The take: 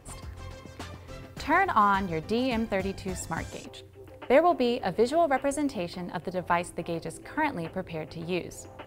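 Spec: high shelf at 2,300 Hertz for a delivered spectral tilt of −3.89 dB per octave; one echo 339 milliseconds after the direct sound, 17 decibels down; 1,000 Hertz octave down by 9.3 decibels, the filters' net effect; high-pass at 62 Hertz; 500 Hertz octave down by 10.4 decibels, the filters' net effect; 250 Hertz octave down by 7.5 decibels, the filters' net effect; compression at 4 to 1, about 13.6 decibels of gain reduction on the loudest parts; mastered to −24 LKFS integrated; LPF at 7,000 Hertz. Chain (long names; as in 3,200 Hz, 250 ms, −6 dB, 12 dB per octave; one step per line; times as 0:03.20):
high-pass filter 62 Hz
low-pass filter 7,000 Hz
parametric band 250 Hz −6.5 dB
parametric band 500 Hz −9 dB
parametric band 1,000 Hz −9 dB
high-shelf EQ 2,300 Hz +4 dB
downward compressor 4 to 1, threshold −41 dBFS
single-tap delay 339 ms −17 dB
level +20 dB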